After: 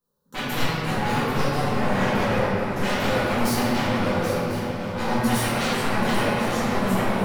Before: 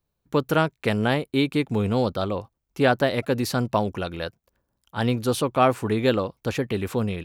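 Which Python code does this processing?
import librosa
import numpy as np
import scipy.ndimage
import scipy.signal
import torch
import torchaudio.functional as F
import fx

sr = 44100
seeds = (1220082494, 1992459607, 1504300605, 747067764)

p1 = fx.peak_eq(x, sr, hz=2400.0, db=-6.0, octaves=1.4)
p2 = np.clip(10.0 ** (22.0 / 20.0) * p1, -1.0, 1.0) / 10.0 ** (22.0 / 20.0)
p3 = p1 + (p2 * librosa.db_to_amplitude(-6.0))
p4 = fx.highpass(p3, sr, hz=130.0, slope=6)
p5 = fx.fixed_phaser(p4, sr, hz=460.0, stages=8)
p6 = 10.0 ** (-26.5 / 20.0) * (np.abs((p5 / 10.0 ** (-26.5 / 20.0) + 3.0) % 4.0 - 2.0) - 1.0)
p7 = p6 + fx.echo_swing(p6, sr, ms=1047, ratio=3, feedback_pct=32, wet_db=-10.0, dry=0)
p8 = fx.room_shoebox(p7, sr, seeds[0], volume_m3=150.0, walls='hard', distance_m=2.0)
y = p8 * librosa.db_to_amplitude(-5.0)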